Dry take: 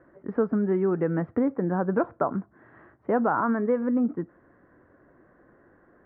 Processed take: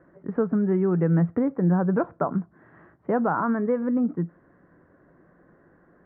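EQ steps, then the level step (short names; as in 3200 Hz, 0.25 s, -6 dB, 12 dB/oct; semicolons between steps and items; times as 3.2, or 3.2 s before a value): air absorption 84 m; bell 170 Hz +10.5 dB 0.27 oct; 0.0 dB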